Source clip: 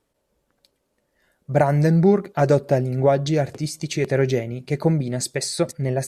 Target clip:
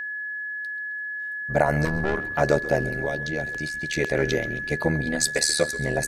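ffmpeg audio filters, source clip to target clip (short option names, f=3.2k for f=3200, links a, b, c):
-filter_complex "[0:a]asettb=1/sr,asplit=3[a][b][c];[a]atrim=end=1.854[d];[b]atrim=start=1.85:end=2.31,asetpts=PTS-STARTPTS,afade=t=in:d=0.004:c=qsin,afade=t=out:st=0.456:d=0.004:c=qsin,aeval=exprs='(tanh(11.2*val(0)+0.75)-tanh(0.75))/11.2':c=same[e];[c]atrim=start=2.306[f];[d][e]acrossfade=d=0.004:c1=hsin:c2=qsin[g];[g][f]acrossfade=d=0.004:c1=qsin:c2=hsin,asettb=1/sr,asplit=3[h][i][j];[h]atrim=end=2.894[k];[i]atrim=start=2.89:end=3.93,asetpts=PTS-STARTPTS,afade=t=in:d=0.004:c=qsin,afade=t=out:st=1.036:d=0.004:c=qsin,acrossover=split=380|3000[l][m][n];[l]acompressor=threshold=-29dB:ratio=4[o];[m]acompressor=threshold=-32dB:ratio=4[p];[n]acompressor=threshold=-46dB:ratio=4[q];[o][p][q]amix=inputs=3:normalize=0[r];[j]atrim=start=3.926[s];[k][r]acrossfade=d=0.004:c1=hsin:c2=qsin[t];[t][s]acrossfade=d=0.004:c1=qsin:c2=hsin,asettb=1/sr,asplit=3[u][v][w];[u]atrim=end=5.064[x];[v]atrim=start=5.06:end=5.64,asetpts=PTS-STARTPTS,afade=t=in:d=0.004:c=qsin,afade=t=out:st=0.576:d=0.004:c=qsin,aecho=1:1:4.1:0.81,atrim=end_sample=25578[y];[w]atrim=start=5.636[z];[x][y]acrossfade=d=0.004:c1=hsin:c2=qsin[aa];[aa][z]acrossfade=d=0.004:c1=qsin:c2=hsin,tremolo=f=76:d=0.857,asplit=2[ab][ac];[ac]alimiter=limit=-16dB:level=0:latency=1:release=38,volume=0.5dB[ad];[ab][ad]amix=inputs=2:normalize=0,lowshelf=f=410:g=-8.5,asplit=2[ae][af];[af]asplit=4[ag][ah][ai][aj];[ag]adelay=133,afreqshift=-97,volume=-16dB[ak];[ah]adelay=266,afreqshift=-194,volume=-22.4dB[al];[ai]adelay=399,afreqshift=-291,volume=-28.8dB[am];[aj]adelay=532,afreqshift=-388,volume=-35.1dB[an];[ak][al][am][an]amix=inputs=4:normalize=0[ao];[ae][ao]amix=inputs=2:normalize=0,aeval=exprs='val(0)+0.0355*sin(2*PI*1700*n/s)':c=same"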